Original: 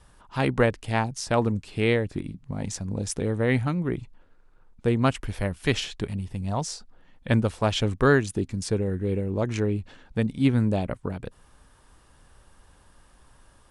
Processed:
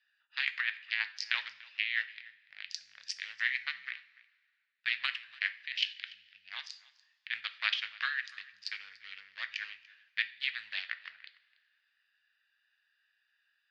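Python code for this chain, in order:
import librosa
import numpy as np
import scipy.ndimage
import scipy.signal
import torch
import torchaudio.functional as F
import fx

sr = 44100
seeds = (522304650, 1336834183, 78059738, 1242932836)

p1 = fx.wiener(x, sr, points=41)
p2 = scipy.signal.sosfilt(scipy.signal.ellip(3, 1.0, 70, [1800.0, 4800.0], 'bandpass', fs=sr, output='sos'), p1)
p3 = fx.over_compress(p2, sr, threshold_db=-39.0, ratio=-1.0)
p4 = p3 + fx.echo_single(p3, sr, ms=290, db=-22.0, dry=0)
p5 = fx.rev_double_slope(p4, sr, seeds[0], early_s=0.41, late_s=2.0, knee_db=-18, drr_db=9.5)
y = F.gain(torch.from_numpy(p5), 7.0).numpy()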